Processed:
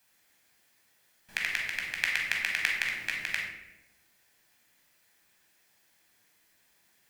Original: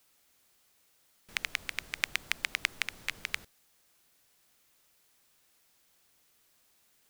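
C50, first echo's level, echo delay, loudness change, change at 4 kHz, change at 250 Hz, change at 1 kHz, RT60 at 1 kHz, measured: 2.5 dB, none, none, +4.5 dB, +1.0 dB, +2.0 dB, +1.0 dB, 0.80 s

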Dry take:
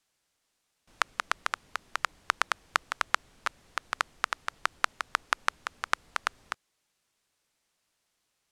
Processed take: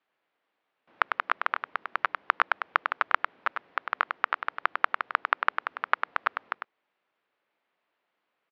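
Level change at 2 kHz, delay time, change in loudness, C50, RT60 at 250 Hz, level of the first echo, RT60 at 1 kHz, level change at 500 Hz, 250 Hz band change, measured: +3.0 dB, 0.1 s, +3.0 dB, none, none, -6.5 dB, none, +4.5 dB, +1.5 dB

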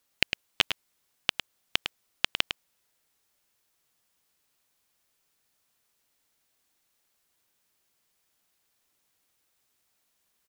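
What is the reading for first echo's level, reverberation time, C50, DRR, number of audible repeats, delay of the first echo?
-8.0 dB, none, none, none, 1, 0.105 s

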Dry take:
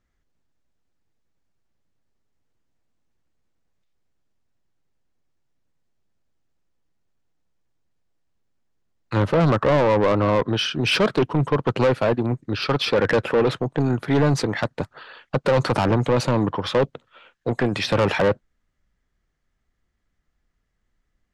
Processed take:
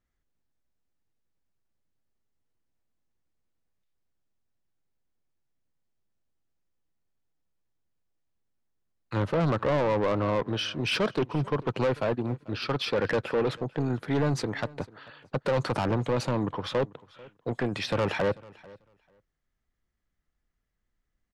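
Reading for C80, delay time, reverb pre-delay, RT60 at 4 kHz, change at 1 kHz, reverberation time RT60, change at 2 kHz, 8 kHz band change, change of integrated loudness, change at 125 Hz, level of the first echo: none, 0.442 s, none, none, -7.5 dB, none, -7.5 dB, -7.5 dB, -7.5 dB, -7.5 dB, -22.5 dB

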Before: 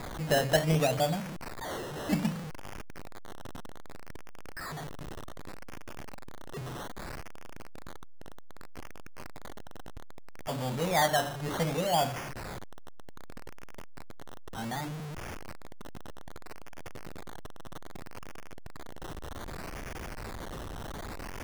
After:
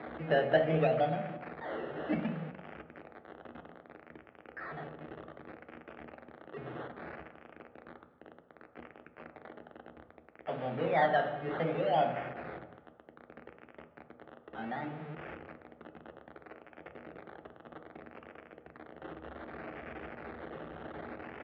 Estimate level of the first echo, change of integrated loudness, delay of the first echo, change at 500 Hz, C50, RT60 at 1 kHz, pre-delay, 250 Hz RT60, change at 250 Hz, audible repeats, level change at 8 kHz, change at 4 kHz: -22.5 dB, -2.0 dB, 0.225 s, +0.5 dB, 11.5 dB, 1.1 s, 3 ms, 1.0 s, -3.0 dB, 1, under -35 dB, -11.5 dB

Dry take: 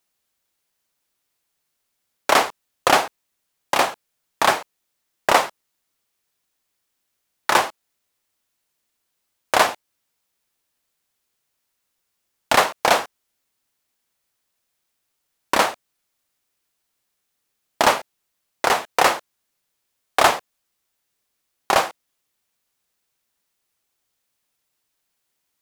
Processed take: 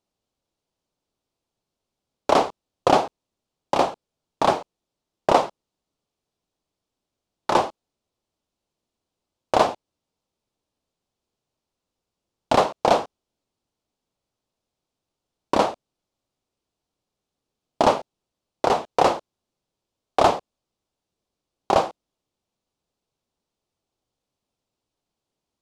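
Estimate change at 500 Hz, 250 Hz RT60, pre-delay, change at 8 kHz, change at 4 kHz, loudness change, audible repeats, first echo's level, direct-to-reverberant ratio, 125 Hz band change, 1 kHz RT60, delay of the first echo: +2.0 dB, none, none, -11.0 dB, -7.5 dB, -2.5 dB, none, none, none, +4.5 dB, none, none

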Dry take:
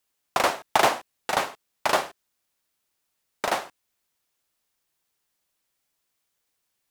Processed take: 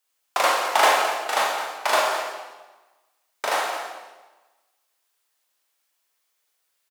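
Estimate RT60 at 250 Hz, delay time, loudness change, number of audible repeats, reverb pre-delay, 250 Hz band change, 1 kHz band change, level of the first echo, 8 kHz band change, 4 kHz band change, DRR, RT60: 1.3 s, 0.214 s, +3.5 dB, 1, 19 ms, -4.5 dB, +4.0 dB, -11.5 dB, +4.5 dB, +4.5 dB, -3.0 dB, 1.2 s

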